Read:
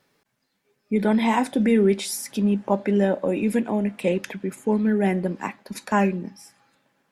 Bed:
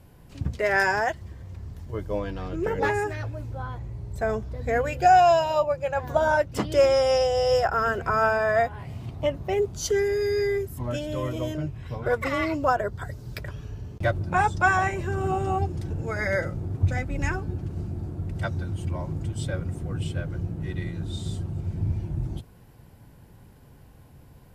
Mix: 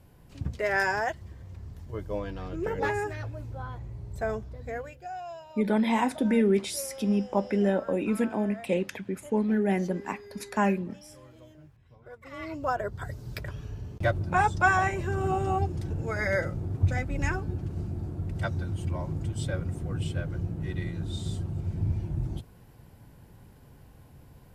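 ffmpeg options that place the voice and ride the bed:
ffmpeg -i stem1.wav -i stem2.wav -filter_complex "[0:a]adelay=4650,volume=-4.5dB[link_01];[1:a]volume=17dB,afade=type=out:start_time=4.26:duration=0.77:silence=0.11885,afade=type=in:start_time=12.23:duration=0.88:silence=0.0891251[link_02];[link_01][link_02]amix=inputs=2:normalize=0" out.wav

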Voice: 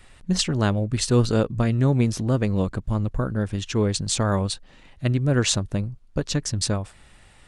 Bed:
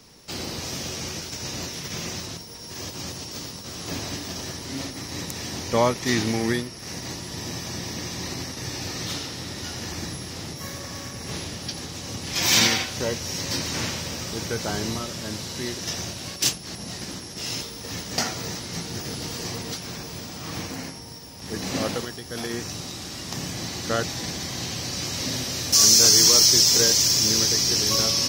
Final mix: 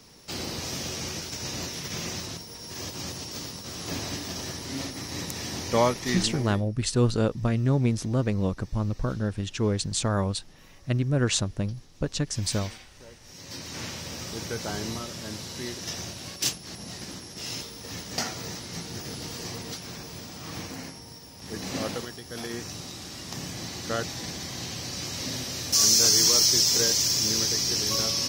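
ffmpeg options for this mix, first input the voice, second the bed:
ffmpeg -i stem1.wav -i stem2.wav -filter_complex "[0:a]adelay=5850,volume=-3.5dB[link_01];[1:a]volume=16.5dB,afade=type=out:start_time=5.82:duration=0.8:silence=0.0891251,afade=type=in:start_time=13.21:duration=1.01:silence=0.125893[link_02];[link_01][link_02]amix=inputs=2:normalize=0" out.wav

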